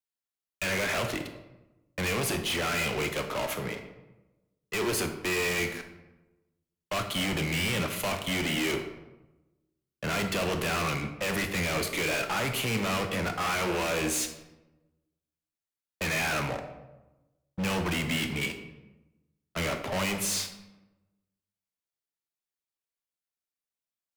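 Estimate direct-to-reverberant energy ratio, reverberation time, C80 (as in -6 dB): 6.0 dB, 1.0 s, 10.5 dB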